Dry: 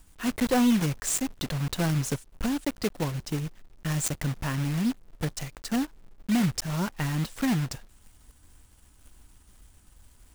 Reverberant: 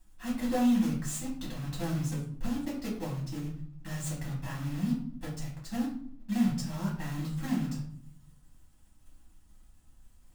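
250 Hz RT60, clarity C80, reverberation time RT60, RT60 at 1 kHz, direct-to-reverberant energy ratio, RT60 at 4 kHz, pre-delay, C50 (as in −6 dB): 0.95 s, 10.0 dB, 0.55 s, 0.50 s, −6.0 dB, 0.40 s, 4 ms, 5.5 dB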